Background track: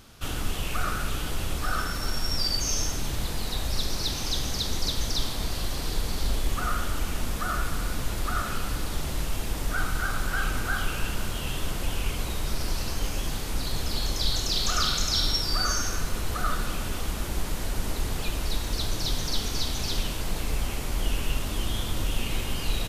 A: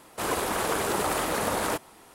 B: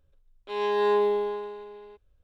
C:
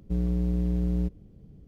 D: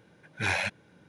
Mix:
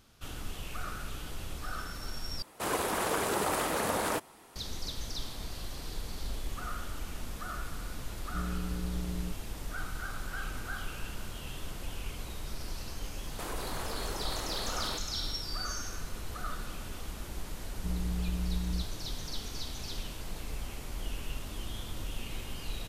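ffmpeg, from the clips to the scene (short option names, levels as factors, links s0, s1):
-filter_complex "[1:a]asplit=2[s0][s1];[3:a]asplit=2[s2][s3];[0:a]volume=0.299[s4];[s1]acompressor=threshold=0.0224:ratio=6:attack=3.2:release=140:knee=1:detection=peak[s5];[s3]bass=f=250:g=12,treble=f=4000:g=6[s6];[s4]asplit=2[s7][s8];[s7]atrim=end=2.424[s9];[s0]atrim=end=2.14,asetpts=PTS-STARTPTS,volume=0.668[s10];[s8]atrim=start=4.556[s11];[s2]atrim=end=1.67,asetpts=PTS-STARTPTS,volume=0.316,afade=t=in:d=0.004:c=hsin,afade=t=out:st=1.666:d=0.004:c=hsin,adelay=8240[s12];[s5]atrim=end=2.14,asetpts=PTS-STARTPTS,volume=0.668,afade=t=in:d=0.004:c=hsin,afade=t=out:st=2.136:d=0.004:c=hsin,adelay=13210[s13];[s6]atrim=end=1.67,asetpts=PTS-STARTPTS,volume=0.126,afade=t=in:d=0.004:c=hsin,afade=t=out:st=1.666:d=0.004:c=hsin,adelay=17740[s14];[s9][s10]acrossfade=d=0.004:c1=hsin:c2=hsin[s15];[s15][s11]acrossfade=d=0.004:c1=hsin:c2=hsin[s16];[s16][s12][s13][s14]amix=inputs=4:normalize=0"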